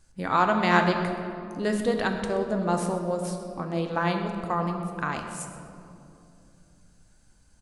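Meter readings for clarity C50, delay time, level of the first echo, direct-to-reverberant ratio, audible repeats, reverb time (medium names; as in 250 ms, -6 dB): 6.0 dB, 127 ms, -16.5 dB, 3.5 dB, 1, 2.7 s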